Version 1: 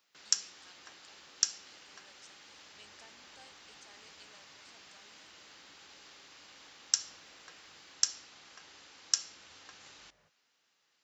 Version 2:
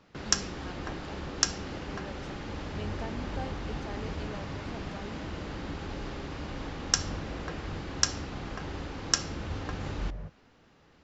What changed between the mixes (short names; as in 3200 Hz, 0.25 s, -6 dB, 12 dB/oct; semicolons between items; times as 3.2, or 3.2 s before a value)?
speech: add high shelf 6700 Hz -11 dB; master: remove differentiator